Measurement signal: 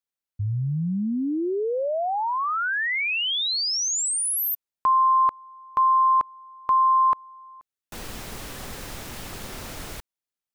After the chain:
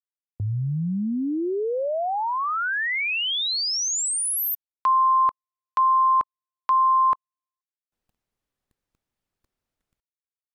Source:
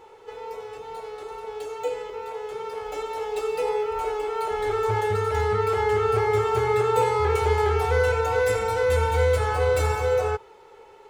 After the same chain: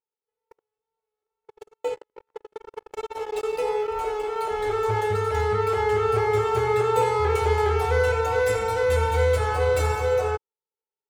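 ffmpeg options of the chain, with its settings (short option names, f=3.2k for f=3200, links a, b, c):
-af "agate=range=-50dB:threshold=-31dB:ratio=16:release=31:detection=rms"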